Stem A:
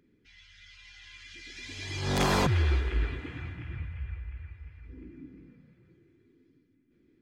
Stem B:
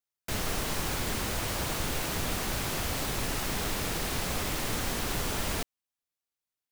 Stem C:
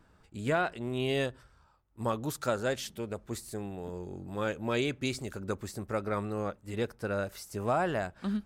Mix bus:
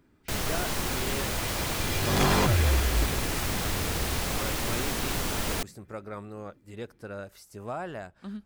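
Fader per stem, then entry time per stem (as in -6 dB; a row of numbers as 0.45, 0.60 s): +1.5, +1.5, -6.5 dB; 0.00, 0.00, 0.00 s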